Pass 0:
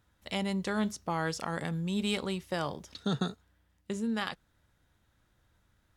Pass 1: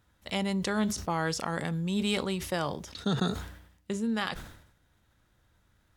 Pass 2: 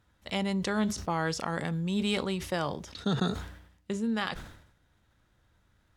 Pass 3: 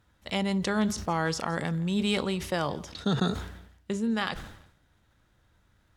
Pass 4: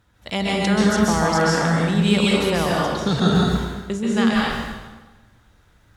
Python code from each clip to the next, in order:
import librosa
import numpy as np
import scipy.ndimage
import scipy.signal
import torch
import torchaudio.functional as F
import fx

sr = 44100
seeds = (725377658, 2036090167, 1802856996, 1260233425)

y1 = fx.sustainer(x, sr, db_per_s=73.0)
y1 = y1 * 10.0 ** (2.0 / 20.0)
y2 = fx.high_shelf(y1, sr, hz=10000.0, db=-9.0)
y3 = fx.echo_feedback(y2, sr, ms=168, feedback_pct=35, wet_db=-22)
y3 = y3 * 10.0 ** (2.0 / 20.0)
y4 = fx.rev_plate(y3, sr, seeds[0], rt60_s=1.2, hf_ratio=0.85, predelay_ms=120, drr_db=-4.5)
y4 = y4 * 10.0 ** (4.5 / 20.0)